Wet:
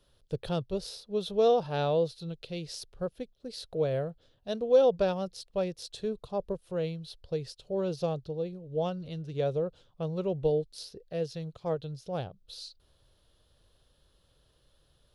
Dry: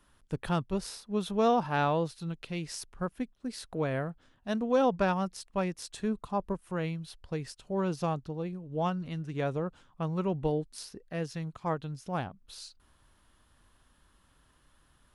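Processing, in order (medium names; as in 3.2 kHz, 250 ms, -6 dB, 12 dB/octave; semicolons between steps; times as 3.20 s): graphic EQ 125/250/500/1000/2000/4000/8000 Hz +4/-9/+11/-9/-8/+9/-6 dB; trim -1.5 dB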